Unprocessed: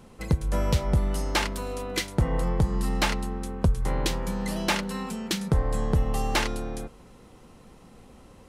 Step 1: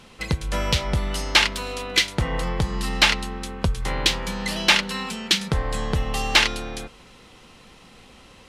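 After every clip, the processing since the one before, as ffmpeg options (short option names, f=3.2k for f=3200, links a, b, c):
-af "equalizer=f=3.2k:t=o:w=2.5:g=14.5,volume=-1dB"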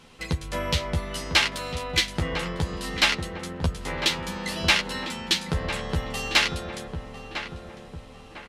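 -filter_complex "[0:a]asplit=2[a][b];[b]adelay=12,volume=-4dB[c];[a][c]amix=inputs=2:normalize=0,asplit=2[d][e];[e]adelay=1001,lowpass=f=1.5k:p=1,volume=-7dB,asplit=2[f][g];[g]adelay=1001,lowpass=f=1.5k:p=1,volume=0.49,asplit=2[h][i];[i]adelay=1001,lowpass=f=1.5k:p=1,volume=0.49,asplit=2[j][k];[k]adelay=1001,lowpass=f=1.5k:p=1,volume=0.49,asplit=2[l][m];[m]adelay=1001,lowpass=f=1.5k:p=1,volume=0.49,asplit=2[n][o];[o]adelay=1001,lowpass=f=1.5k:p=1,volume=0.49[p];[d][f][h][j][l][n][p]amix=inputs=7:normalize=0,volume=-5dB"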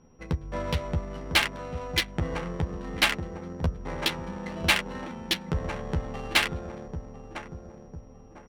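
-af "aeval=exprs='val(0)+0.02*sin(2*PI*5700*n/s)':c=same,adynamicsmooth=sensitivity=1.5:basefreq=680,volume=-1.5dB"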